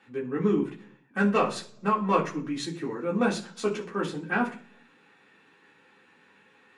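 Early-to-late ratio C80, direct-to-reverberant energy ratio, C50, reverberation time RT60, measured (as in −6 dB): 17.0 dB, −4.5 dB, 12.5 dB, 0.50 s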